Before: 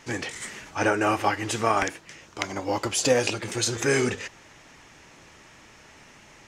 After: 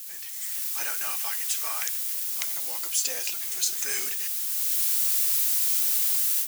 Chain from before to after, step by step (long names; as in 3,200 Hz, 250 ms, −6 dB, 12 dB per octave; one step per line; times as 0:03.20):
0:00.84–0:01.86: parametric band 200 Hz −13 dB 2.3 octaves
bit-depth reduction 6 bits, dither triangular
automatic gain control gain up to 15.5 dB
first difference
level −6 dB